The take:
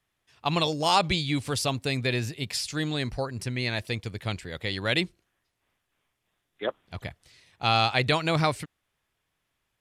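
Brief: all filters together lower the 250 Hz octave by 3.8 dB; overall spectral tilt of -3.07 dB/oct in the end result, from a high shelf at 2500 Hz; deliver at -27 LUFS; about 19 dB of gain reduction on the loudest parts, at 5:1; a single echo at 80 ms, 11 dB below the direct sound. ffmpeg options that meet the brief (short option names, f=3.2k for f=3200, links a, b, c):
-af "equalizer=f=250:t=o:g=-6,highshelf=f=2.5k:g=7.5,acompressor=threshold=-38dB:ratio=5,aecho=1:1:80:0.282,volume=12.5dB"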